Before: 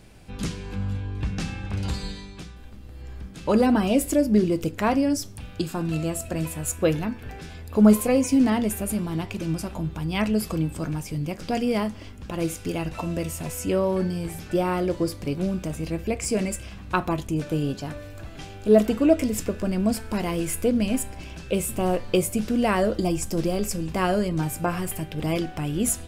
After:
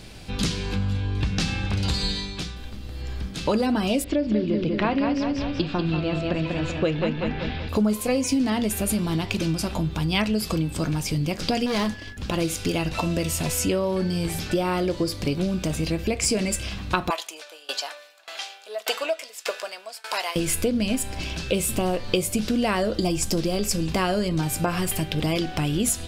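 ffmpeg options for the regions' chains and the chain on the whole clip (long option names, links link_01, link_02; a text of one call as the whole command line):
ffmpeg -i in.wav -filter_complex "[0:a]asettb=1/sr,asplit=3[link_01][link_02][link_03];[link_01]atrim=end=4.044[link_04];[link_02]atrim=start=4.04:end=7.69,asetpts=PTS-STARTPTS,afade=type=in:duration=0.004:curve=qsin,afade=type=out:start_time=3.646:duration=0.004:curve=qsin,lowpass=frequency=3700:width=0.5412,lowpass=frequency=3700:width=1.3066,aecho=1:1:191|382|573|764|955:0.562|0.231|0.0945|0.0388|0.0159,atrim=end_sample=160965[link_05];[link_03]atrim=start=7.686[link_06];[link_04][link_05]acrossfade=duration=0.004:curve1=hsin:curve2=qsin[link_07];[link_07][link_06]acrossfade=duration=0.004:curve1=qsin:curve2=hsin,asettb=1/sr,asplit=3[link_08][link_09][link_10];[link_08]atrim=end=11.664[link_11];[link_09]atrim=start=11.66:end=12.17,asetpts=PTS-STARTPTS,afade=type=in:duration=0.004:curve=qsin,afade=type=out:start_time=0.506:duration=0.004:curve=qsin,agate=range=-33dB:threshold=-35dB:ratio=3:release=100:detection=peak,volume=25.5dB,asoftclip=hard,volume=-25.5dB,aeval=exprs='val(0)+0.00355*sin(2*PI*1700*n/s)':channel_layout=same[link_12];[link_10]atrim=start=12.166[link_13];[link_11][link_12]acrossfade=duration=0.004:curve1=hsin:curve2=qsin[link_14];[link_14][link_13]acrossfade=duration=0.004:curve1=qsin:curve2=hsin,asettb=1/sr,asplit=3[link_15][link_16][link_17];[link_15]atrim=end=17.104[link_18];[link_16]atrim=start=17.1:end=20.36,asetpts=PTS-STARTPTS,afade=type=in:duration=0.004:curve=qsin,afade=type=out:start_time=3.256:duration=0.004:curve=qsin,highpass=frequency=640:width=0.5412,highpass=frequency=640:width=1.3066,acontrast=27,aeval=exprs='val(0)*pow(10,-25*if(lt(mod(1.7*n/s,1),2*abs(1.7)/1000),1-mod(1.7*n/s,1)/(2*abs(1.7)/1000),(mod(1.7*n/s,1)-2*abs(1.7)/1000)/(1-2*abs(1.7)/1000))/20)':channel_layout=same[link_19];[link_17]atrim=start=20.356[link_20];[link_18][link_19]acrossfade=duration=0.004:curve1=hsin:curve2=qsin[link_21];[link_21][link_20]acrossfade=duration=0.004:curve1=qsin:curve2=hsin,acompressor=threshold=-28dB:ratio=4,equalizer=frequency=4100:width_type=o:width=1.2:gain=8.5,volume=6.5dB" out.wav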